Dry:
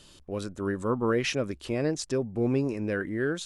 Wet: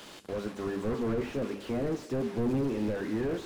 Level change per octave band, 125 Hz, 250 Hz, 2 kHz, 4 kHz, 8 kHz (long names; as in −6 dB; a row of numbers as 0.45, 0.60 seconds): −3.5, −1.5, −9.0, −9.5, −12.0 decibels